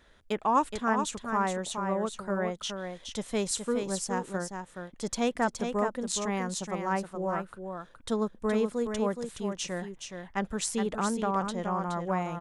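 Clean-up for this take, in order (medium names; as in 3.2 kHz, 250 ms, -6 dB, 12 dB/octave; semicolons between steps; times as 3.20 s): inverse comb 420 ms -6.5 dB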